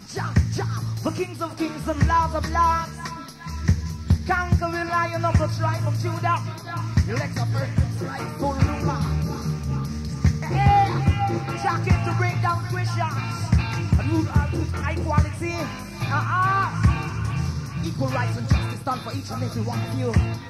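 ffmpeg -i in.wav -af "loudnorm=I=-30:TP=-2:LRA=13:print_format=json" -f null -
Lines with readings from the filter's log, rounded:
"input_i" : "-24.0",
"input_tp" : "-4.9",
"input_lra" : "3.1",
"input_thresh" : "-34.0",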